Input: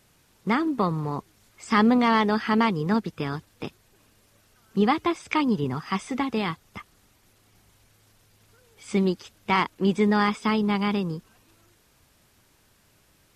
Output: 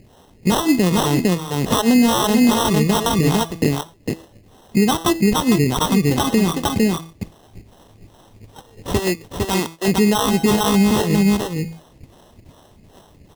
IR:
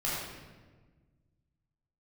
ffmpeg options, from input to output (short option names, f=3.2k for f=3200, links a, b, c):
-filter_complex "[0:a]acrossover=split=540[a][b];[a]aeval=exprs='val(0)*(1-1/2+1/2*cos(2*PI*2.5*n/s))':c=same[c];[b]aeval=exprs='val(0)*(1-1/2-1/2*cos(2*PI*2.5*n/s))':c=same[d];[c][d]amix=inputs=2:normalize=0,asplit=2[e][f];[f]acompressor=mode=upward:threshold=-31dB:ratio=2.5,volume=0.5dB[g];[e][g]amix=inputs=2:normalize=0,bandreject=f=163.6:t=h:w=4,bandreject=f=327.2:t=h:w=4,bandreject=f=490.8:t=h:w=4,bandreject=f=654.4:t=h:w=4,bandreject=f=818:t=h:w=4,bandreject=f=981.6:t=h:w=4,bandreject=f=1.1452k:t=h:w=4,bandreject=f=1.3088k:t=h:w=4,bandreject=f=1.4724k:t=h:w=4,bandreject=f=1.636k:t=h:w=4,acrusher=samples=19:mix=1:aa=0.000001,asettb=1/sr,asplit=3[h][i][j];[h]atrim=end=8.994[k];[i]atrim=start=8.99:end=9.88,asetpts=PTS-STARTPTS,afade=t=in:d=0.004:c=qsin,afade=t=out:st=0.886:d=0.004:c=qsin,lowshelf=f=300:g=-12[l];[j]atrim=start=9.876[m];[k][l]acrossfade=d=0.004:c1=hsin:c2=qsin[n];[n][m]acrossfade=d=0.004:c1=qsin:c2=hsin,agate=range=-15dB:threshold=-42dB:ratio=16:detection=peak,equalizer=f=1.4k:t=o:w=0.62:g=-10.5,aeval=exprs='0.631*(cos(1*acos(clip(val(0)/0.631,-1,1)))-cos(1*PI/2))+0.00794*(cos(7*acos(clip(val(0)/0.631,-1,1)))-cos(7*PI/2))':c=same,asplit=2[o][p];[p]aecho=0:1:455:0.596[q];[o][q]amix=inputs=2:normalize=0,acompressor=threshold=-22dB:ratio=6,alimiter=level_in=18.5dB:limit=-1dB:release=50:level=0:latency=1,volume=-5.5dB"